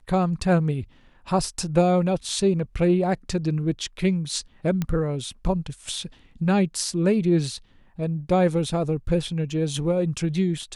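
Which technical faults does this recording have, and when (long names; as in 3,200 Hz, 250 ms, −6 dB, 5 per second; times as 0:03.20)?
0:04.82: click −13 dBFS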